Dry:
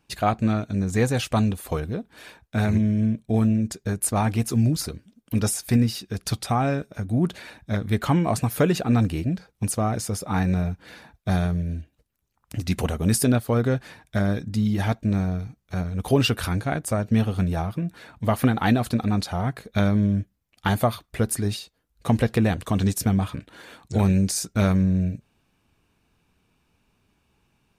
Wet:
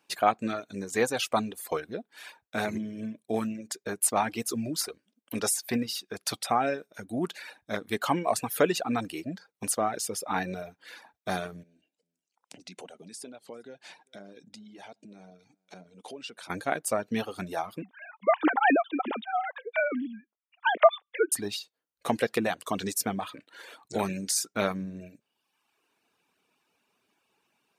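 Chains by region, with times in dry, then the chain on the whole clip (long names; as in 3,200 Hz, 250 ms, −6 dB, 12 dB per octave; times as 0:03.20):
0:11.63–0:16.50: downward compressor 4 to 1, threshold −37 dBFS + loudspeaker in its box 170–9,000 Hz, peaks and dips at 180 Hz +5 dB, 1,200 Hz −9 dB, 1,800 Hz −6 dB + single-tap delay 398 ms −22 dB
0:17.82–0:21.32: three sine waves on the formant tracks + high-pass filter 270 Hz 24 dB per octave
whole clip: reverb reduction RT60 0.97 s; high-pass filter 360 Hz 12 dB per octave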